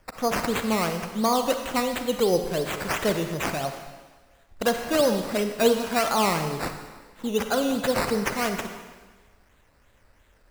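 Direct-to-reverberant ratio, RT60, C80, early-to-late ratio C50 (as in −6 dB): 6.5 dB, 1.4 s, 8.5 dB, 7.0 dB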